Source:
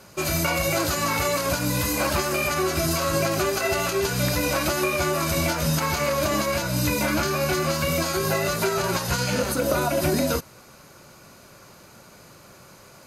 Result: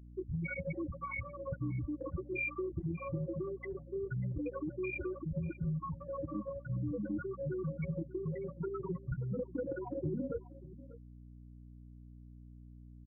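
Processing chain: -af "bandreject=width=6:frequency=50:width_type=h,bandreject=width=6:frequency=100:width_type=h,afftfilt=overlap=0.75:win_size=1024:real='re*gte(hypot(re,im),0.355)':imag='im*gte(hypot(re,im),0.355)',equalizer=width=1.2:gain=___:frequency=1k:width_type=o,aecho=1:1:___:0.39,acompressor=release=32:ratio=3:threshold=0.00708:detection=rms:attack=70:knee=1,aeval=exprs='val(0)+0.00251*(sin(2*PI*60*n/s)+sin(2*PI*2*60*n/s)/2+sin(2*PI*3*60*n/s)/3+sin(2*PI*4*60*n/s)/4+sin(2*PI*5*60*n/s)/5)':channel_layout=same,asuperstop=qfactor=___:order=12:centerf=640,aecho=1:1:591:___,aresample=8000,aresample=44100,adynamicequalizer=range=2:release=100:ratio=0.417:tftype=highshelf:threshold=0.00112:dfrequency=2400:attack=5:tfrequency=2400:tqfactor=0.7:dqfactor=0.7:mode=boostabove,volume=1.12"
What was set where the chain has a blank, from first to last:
-15, 6.3, 3.9, 0.126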